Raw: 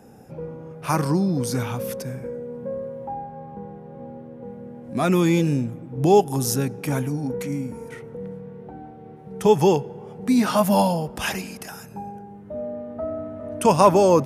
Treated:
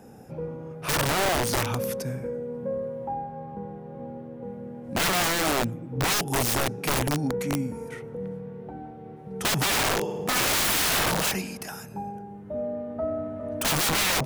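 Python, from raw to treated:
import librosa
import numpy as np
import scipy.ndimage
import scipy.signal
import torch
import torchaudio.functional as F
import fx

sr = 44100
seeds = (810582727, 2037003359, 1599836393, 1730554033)

y = fx.room_flutter(x, sr, wall_m=9.6, rt60_s=1.1, at=(9.7, 11.3), fade=0.02)
y = (np.mod(10.0 ** (19.0 / 20.0) * y + 1.0, 2.0) - 1.0) / 10.0 ** (19.0 / 20.0)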